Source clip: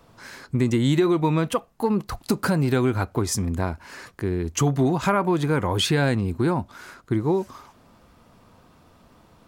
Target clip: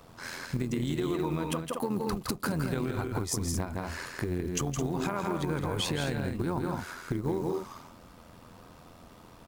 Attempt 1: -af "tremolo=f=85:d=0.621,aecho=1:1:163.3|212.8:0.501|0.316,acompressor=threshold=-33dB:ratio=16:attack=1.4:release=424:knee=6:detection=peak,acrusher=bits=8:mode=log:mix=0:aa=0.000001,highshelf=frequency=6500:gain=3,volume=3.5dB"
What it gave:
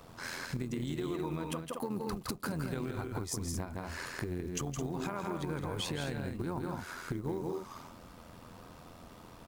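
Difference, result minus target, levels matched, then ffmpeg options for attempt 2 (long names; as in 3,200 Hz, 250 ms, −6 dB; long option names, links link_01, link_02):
downward compressor: peak gain reduction +5.5 dB
-af "tremolo=f=85:d=0.621,aecho=1:1:163.3|212.8:0.501|0.316,acompressor=threshold=-27dB:ratio=16:attack=1.4:release=424:knee=6:detection=peak,acrusher=bits=8:mode=log:mix=0:aa=0.000001,highshelf=frequency=6500:gain=3,volume=3.5dB"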